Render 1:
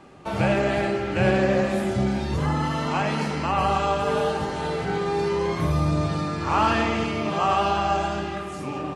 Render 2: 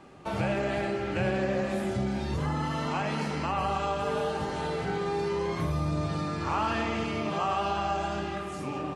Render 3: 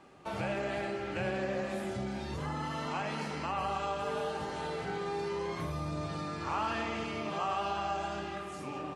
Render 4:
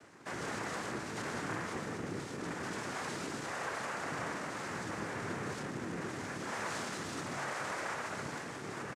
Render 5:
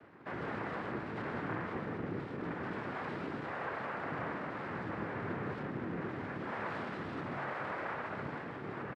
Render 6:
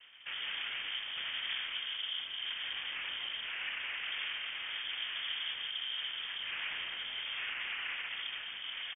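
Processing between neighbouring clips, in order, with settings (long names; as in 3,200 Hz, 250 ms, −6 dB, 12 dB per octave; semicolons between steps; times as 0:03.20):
downward compressor 2 to 1, threshold −25 dBFS, peak gain reduction 5.5 dB; level −3 dB
low-shelf EQ 280 Hz −5.5 dB; level −4 dB
soft clipping −35 dBFS, distortion −11 dB; cochlear-implant simulation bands 3; double-tracking delay 29 ms −14 dB
high-frequency loss of the air 440 metres; level +2 dB
voice inversion scrambler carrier 3,400 Hz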